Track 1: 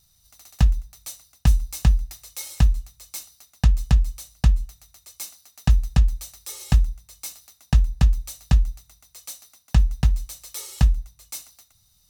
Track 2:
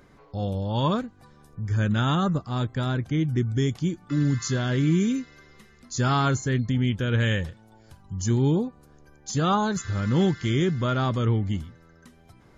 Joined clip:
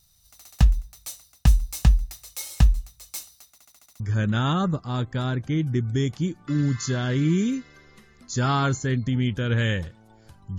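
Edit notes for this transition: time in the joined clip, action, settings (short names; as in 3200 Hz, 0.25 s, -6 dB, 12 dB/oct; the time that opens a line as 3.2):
track 1
3.51 stutter in place 0.07 s, 7 plays
4 switch to track 2 from 1.62 s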